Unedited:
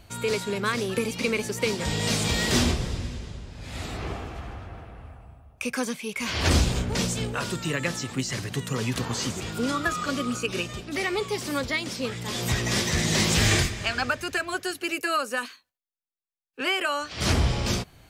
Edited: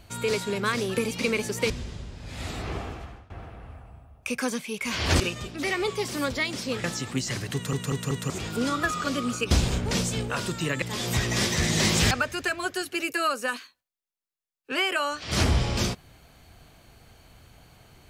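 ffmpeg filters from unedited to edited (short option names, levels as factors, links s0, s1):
-filter_complex "[0:a]asplit=12[s0][s1][s2][s3][s4][s5][s6][s7][s8][s9][s10][s11];[s0]atrim=end=1.702[s12];[s1]atrim=start=3.048:end=4.65,asetpts=PTS-STARTPTS,afade=t=out:st=1.212:d=0.39:silence=0.0891251[s13];[s2]atrim=start=4.65:end=6.552,asetpts=PTS-STARTPTS,afade=t=in:d=0.004:c=hsin:silence=0.0891251[s14];[s3]atrim=start=10.528:end=12.172[s15];[s4]atrim=start=7.858:end=8.752[s16];[s5]atrim=start=8.558:end=8.752[s17];[s6]atrim=start=8.558:end=8.752[s18];[s7]atrim=start=8.558:end=8.752[s19];[s8]atrim=start=9.318:end=10.532[s20];[s9]atrim=start=6.548:end=7.862[s21];[s10]atrim=start=12.168:end=13.462[s22];[s11]atrim=start=13.998[s23];[s13][s14]concat=n=2:v=0:a=1[s24];[s12][s24]acrossfade=d=0.004:c1=hsin:c2=hsin[s25];[s25][s15]acrossfade=d=0.004:c1=hsin:c2=hsin[s26];[s26][s16]acrossfade=d=0.004:c1=hsin:c2=hsin[s27];[s27][s17]acrossfade=d=0.004:c1=hsin:c2=hsin[s28];[s28][s18]acrossfade=d=0.004:c1=hsin:c2=hsin[s29];[s29][s19]acrossfade=d=0.004:c1=hsin:c2=hsin[s30];[s30][s20]acrossfade=d=0.004:c1=hsin:c2=hsin[s31];[s31][s21]acrossfade=d=0.004:c1=hsin:c2=hsin[s32];[s32][s22]acrossfade=d=0.004:c1=hsin:c2=hsin[s33];[s33][s23]acrossfade=d=0.004:c1=hsin:c2=hsin"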